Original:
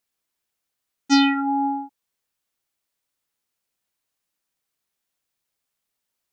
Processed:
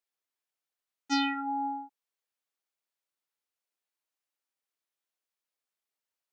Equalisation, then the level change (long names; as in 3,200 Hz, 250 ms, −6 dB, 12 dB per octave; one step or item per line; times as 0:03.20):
high-pass filter 340 Hz 12 dB per octave
high-shelf EQ 4,900 Hz −4.5 dB
−8.0 dB